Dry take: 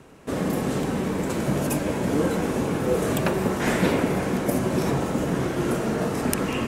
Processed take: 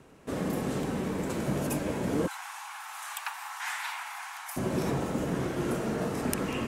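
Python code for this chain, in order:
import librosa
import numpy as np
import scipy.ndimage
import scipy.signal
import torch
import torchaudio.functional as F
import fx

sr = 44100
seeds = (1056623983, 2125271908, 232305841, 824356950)

y = fx.steep_highpass(x, sr, hz=800.0, slope=72, at=(2.26, 4.56), fade=0.02)
y = y * 10.0 ** (-6.0 / 20.0)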